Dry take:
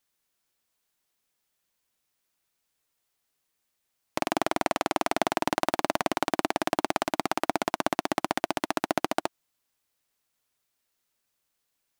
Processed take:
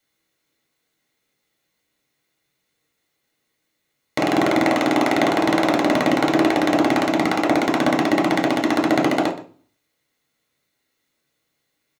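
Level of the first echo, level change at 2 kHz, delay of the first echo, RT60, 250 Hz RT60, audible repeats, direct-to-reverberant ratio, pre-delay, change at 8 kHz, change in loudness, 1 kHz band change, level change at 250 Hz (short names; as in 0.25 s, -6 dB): -16.5 dB, +9.5 dB, 0.123 s, 0.45 s, 0.60 s, 1, -0.5 dB, 3 ms, +3.0 dB, +10.0 dB, +6.5 dB, +14.5 dB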